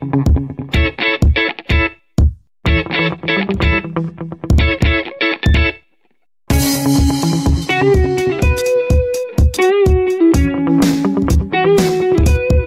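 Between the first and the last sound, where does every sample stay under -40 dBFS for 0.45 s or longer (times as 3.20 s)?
5.80–6.48 s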